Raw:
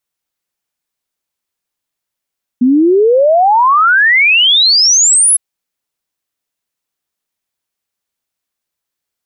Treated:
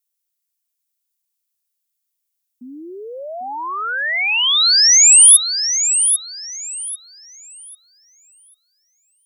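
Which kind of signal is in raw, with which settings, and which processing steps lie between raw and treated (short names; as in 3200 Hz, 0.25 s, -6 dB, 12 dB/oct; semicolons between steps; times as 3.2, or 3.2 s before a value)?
log sweep 240 Hz -> 11000 Hz 2.76 s -5.5 dBFS
pre-emphasis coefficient 0.97; thinning echo 0.794 s, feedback 26%, high-pass 300 Hz, level -8 dB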